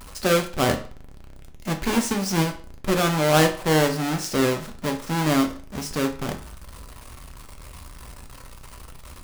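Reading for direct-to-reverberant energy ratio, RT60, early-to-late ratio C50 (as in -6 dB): 4.0 dB, 0.40 s, 11.5 dB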